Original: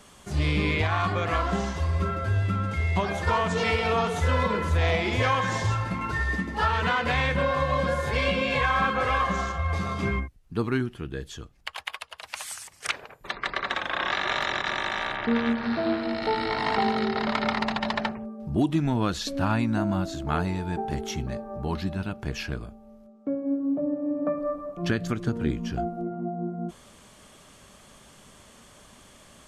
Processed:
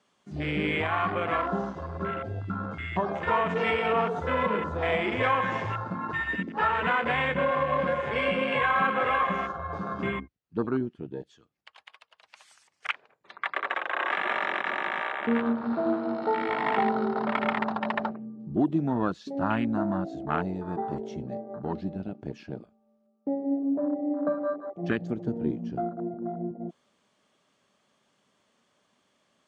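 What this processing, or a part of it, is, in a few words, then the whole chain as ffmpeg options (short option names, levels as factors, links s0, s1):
over-cleaned archive recording: -af "highpass=180,lowpass=5800,afwtdn=0.0316"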